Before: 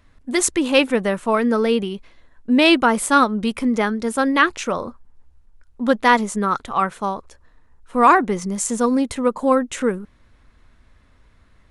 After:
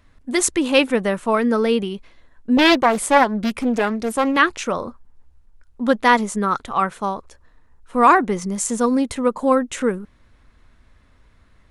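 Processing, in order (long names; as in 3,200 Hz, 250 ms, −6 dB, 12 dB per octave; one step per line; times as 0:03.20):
0:02.57–0:04.37: highs frequency-modulated by the lows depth 0.64 ms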